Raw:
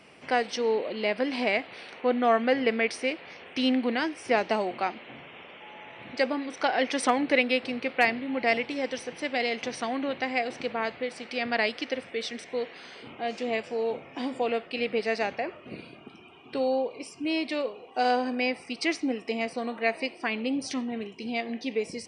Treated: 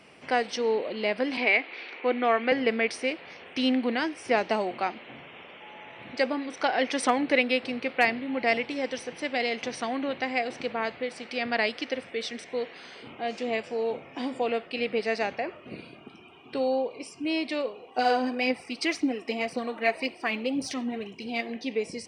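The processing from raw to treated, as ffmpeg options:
ffmpeg -i in.wav -filter_complex "[0:a]asettb=1/sr,asplit=3[link_01][link_02][link_03];[link_01]atrim=end=1.374[link_04];[link_02]atrim=start=1.37:end=2.52,asetpts=PTS-STARTPTS,afade=type=in:duration=0.004:curve=qsin,afade=type=out:start_time=1.146:duration=0.004:curve=qsin,highpass=frequency=260:width=0.5412,highpass=frequency=260:width=1.3066,equalizer=frequency=330:width_type=q:width=4:gain=4,equalizer=frequency=620:width_type=q:width=4:gain=-4,equalizer=frequency=2300:width_type=q:width=4:gain=8,lowpass=frequency=5000:width=0.5412,lowpass=frequency=5000:width=1.3066[link_05];[link_03]atrim=start=2.516[link_06];[link_04][link_05]acrossfade=duration=0.004:curve1=hsin:curve2=qsin[link_07];[link_07][link_06]acrossfade=duration=0.004:curve1=qsin:curve2=hsin,asettb=1/sr,asplit=3[link_08][link_09][link_10];[link_08]atrim=end=17.984[link_11];[link_09]atrim=start=17.98:end=21.56,asetpts=PTS-STARTPTS,afade=type=in:duration=0.004:curve=qsin,afade=type=out:start_time=3.576:duration=0.004:curve=qsin,aphaser=in_gain=1:out_gain=1:delay=3.9:decay=0.43:speed=1.9:type=triangular[link_12];[link_10]atrim=start=21.556[link_13];[link_11][link_12]acrossfade=duration=0.004:curve1=hsin:curve2=qsin[link_14];[link_14][link_13]acrossfade=duration=0.004:curve1=qsin:curve2=hsin" out.wav

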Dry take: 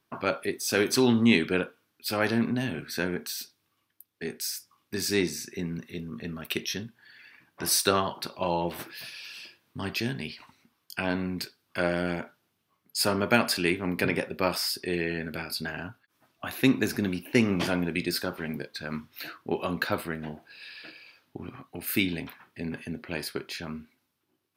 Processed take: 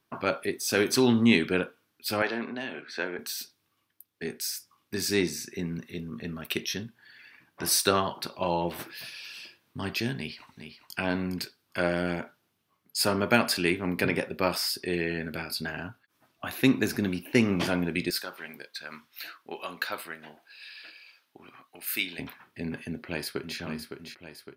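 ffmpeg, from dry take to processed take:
ffmpeg -i in.wav -filter_complex "[0:a]asettb=1/sr,asplit=3[link_01][link_02][link_03];[link_01]atrim=end=2.224[link_04];[link_02]atrim=start=2.22:end=3.19,asetpts=PTS-STARTPTS,afade=type=in:duration=0.004:curve=qsin,afade=type=out:start_time=0.966:duration=0.004:curve=qsin,highpass=400,lowpass=3900[link_05];[link_03]atrim=start=3.186[link_06];[link_04][link_05]acrossfade=duration=0.004:curve1=hsin:curve2=qsin[link_07];[link_07][link_06]acrossfade=duration=0.004:curve1=qsin:curve2=hsin,asplit=2[link_08][link_09];[link_09]afade=type=in:start_time=10.16:duration=0.01,afade=type=out:start_time=10.97:duration=0.01,aecho=0:1:410|820:0.375837|0.0563756[link_10];[link_08][link_10]amix=inputs=2:normalize=0,asettb=1/sr,asplit=3[link_11][link_12][link_13];[link_11]atrim=end=18.104[link_14];[link_12]atrim=start=18.1:end=22.19,asetpts=PTS-STARTPTS,afade=type=in:duration=0.004:curve=qsin,afade=type=out:start_time=4.086:duration=0.004:curve=qsin,highpass=frequency=1300:poles=1[link_15];[link_13]atrim=start=22.186[link_16];[link_14][link_15]acrossfade=duration=0.004:curve1=hsin:curve2=qsin[link_17];[link_17][link_16]acrossfade=duration=0.004:curve1=qsin:curve2=hsin,asplit=2[link_18][link_19];[link_19]afade=type=in:start_time=22.87:duration=0.01,afade=type=out:start_time=23.58:duration=0.01,aecho=0:1:560|1120|1680|2240|2800|3360|3920:0.421697|0.231933|0.127563|0.0701598|0.0385879|0.0212233|0.0116728[link_20];[link_18][link_20]amix=inputs=2:normalize=0" out.wav

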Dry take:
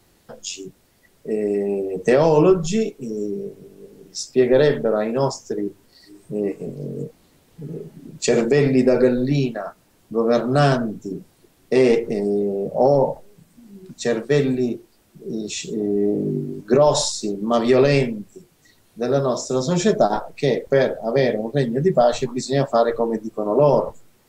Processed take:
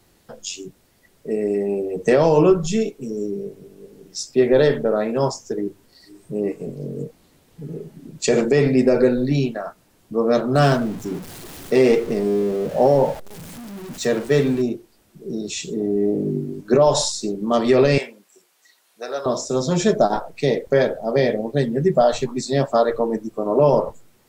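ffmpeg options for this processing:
ffmpeg -i in.wav -filter_complex "[0:a]asettb=1/sr,asplit=3[link_01][link_02][link_03];[link_01]atrim=end=10.554[link_04];[link_02]atrim=start=10.55:end=14.62,asetpts=PTS-STARTPTS,afade=type=in:duration=0.004:curve=qsin,afade=type=out:start_time=4.066:duration=0.004:curve=qsin,aeval=exprs='val(0)+0.5*0.0237*sgn(val(0))':channel_layout=same[link_05];[link_03]atrim=start=14.616[link_06];[link_04][link_05]acrossfade=duration=0.004:curve1=hsin:curve2=qsin[link_07];[link_07][link_06]acrossfade=duration=0.004:curve1=qsin:curve2=hsin,asettb=1/sr,asplit=3[link_08][link_09][link_10];[link_08]atrim=end=17.984[link_11];[link_09]atrim=start=17.98:end=19.26,asetpts=PTS-STARTPTS,afade=type=in:duration=0.004:curve=qsin,afade=type=out:start_time=1.276:duration=0.004:curve=qsin,highpass=760[link_12];[link_10]atrim=start=19.256[link_13];[link_11][link_12]acrossfade=duration=0.004:curve1=hsin:curve2=qsin[link_14];[link_14][link_13]acrossfade=duration=0.004:curve1=qsin:curve2=hsin" out.wav

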